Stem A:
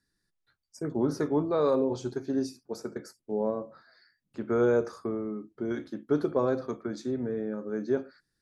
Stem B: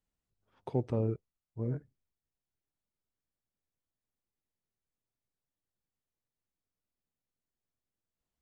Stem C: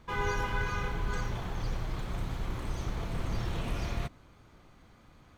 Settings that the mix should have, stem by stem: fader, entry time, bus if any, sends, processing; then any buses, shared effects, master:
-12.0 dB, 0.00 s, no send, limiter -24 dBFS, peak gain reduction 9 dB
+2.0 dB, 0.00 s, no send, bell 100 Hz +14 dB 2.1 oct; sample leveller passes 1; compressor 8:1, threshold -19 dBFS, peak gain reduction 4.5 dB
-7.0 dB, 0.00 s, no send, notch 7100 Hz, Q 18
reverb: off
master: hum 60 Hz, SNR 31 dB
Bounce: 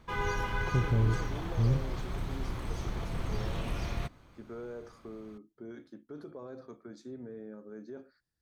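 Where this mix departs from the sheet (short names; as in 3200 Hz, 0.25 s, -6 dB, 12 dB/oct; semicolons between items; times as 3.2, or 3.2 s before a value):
stem B +2.0 dB -> -5.0 dB; stem C -7.0 dB -> -1.0 dB; master: missing hum 60 Hz, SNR 31 dB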